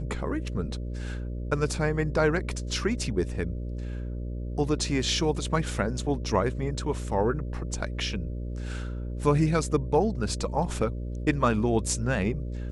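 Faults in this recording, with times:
buzz 60 Hz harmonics 10 -33 dBFS
5.99 s: dropout 2.1 ms

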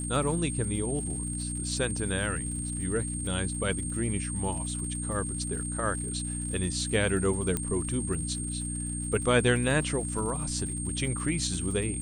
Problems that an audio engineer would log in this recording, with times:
crackle 120 per s -39 dBFS
hum 60 Hz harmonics 5 -35 dBFS
whine 8.6 kHz -35 dBFS
7.57 s: pop -14 dBFS

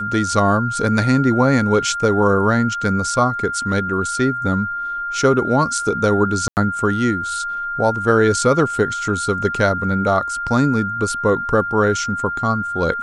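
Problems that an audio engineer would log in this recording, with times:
whine 1.4 kHz -22 dBFS
6.48–6.57 s: dropout 89 ms

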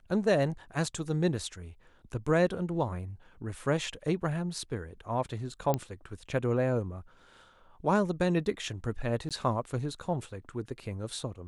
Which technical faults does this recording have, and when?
5.74 s: pop -15 dBFS
9.29–9.31 s: dropout 17 ms

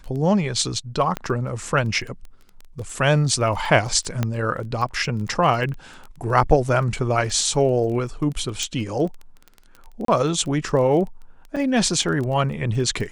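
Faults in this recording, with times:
crackle 14 per s -29 dBFS
1.17 s: pop -12 dBFS
4.23 s: pop -9 dBFS
8.63 s: pop
10.05–10.08 s: dropout 33 ms
11.56–11.57 s: dropout 6.3 ms

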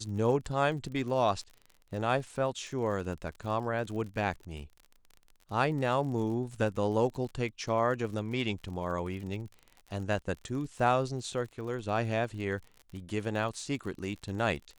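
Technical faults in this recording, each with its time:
crackle 40 per s -40 dBFS

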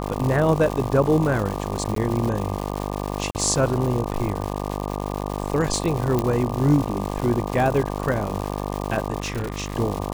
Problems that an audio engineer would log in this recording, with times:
buzz 50 Hz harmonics 24 -28 dBFS
crackle 270 per s -26 dBFS
1.95–1.96 s: dropout 13 ms
3.31–3.35 s: dropout 39 ms
6.19 s: pop -9 dBFS
9.20–9.76 s: clipped -22.5 dBFS

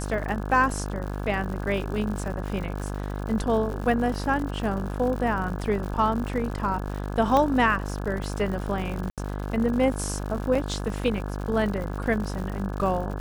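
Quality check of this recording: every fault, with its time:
buzz 50 Hz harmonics 34 -31 dBFS
crackle 140 per s -33 dBFS
7.37 s: pop -11 dBFS
9.10–9.18 s: dropout 77 ms
10.55 s: dropout 4.2 ms

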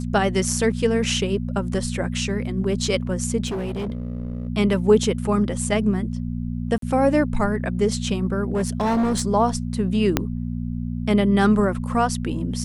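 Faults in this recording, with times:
hum 60 Hz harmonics 4 -27 dBFS
3.46–4.49 s: clipped -23.5 dBFS
6.78–6.82 s: dropout 43 ms
8.52–9.22 s: clipped -17.5 dBFS
10.17 s: pop -3 dBFS

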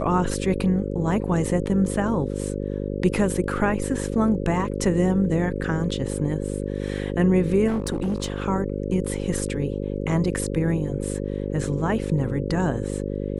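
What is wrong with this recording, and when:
buzz 50 Hz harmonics 11 -28 dBFS
7.67–8.46 s: clipped -20.5 dBFS

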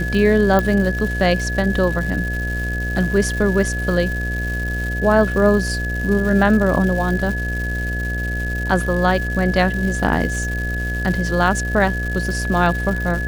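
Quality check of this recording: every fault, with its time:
buzz 60 Hz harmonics 12 -24 dBFS
crackle 320 per s -26 dBFS
whine 1.7 kHz -25 dBFS
0.59 s: pop -6 dBFS

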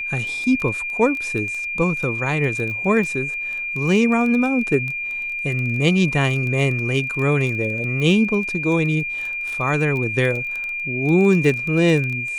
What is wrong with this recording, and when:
crackle 12 per s -24 dBFS
whine 2.4 kHz -24 dBFS

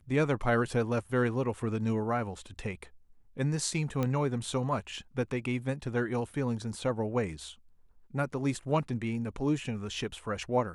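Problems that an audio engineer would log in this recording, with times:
4.03 s: pop -18 dBFS

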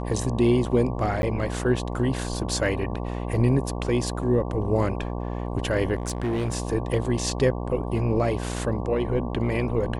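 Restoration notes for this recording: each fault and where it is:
buzz 60 Hz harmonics 19 -30 dBFS
1.22–1.23 s: dropout
5.94–6.54 s: clipped -22 dBFS

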